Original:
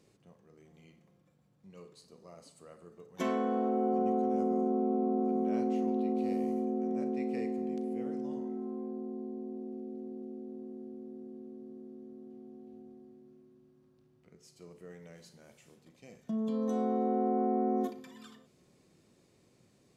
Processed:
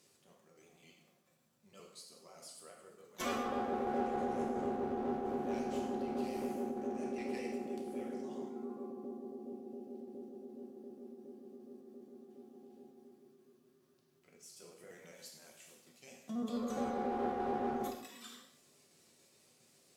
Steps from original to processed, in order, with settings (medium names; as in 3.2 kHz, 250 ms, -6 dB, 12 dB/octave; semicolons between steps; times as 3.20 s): pitch shift switched off and on +1.5 st, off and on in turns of 69 ms; tilt EQ +3 dB/octave; one-sided clip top -35 dBFS; gated-style reverb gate 250 ms falling, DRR 0.5 dB; trim -3 dB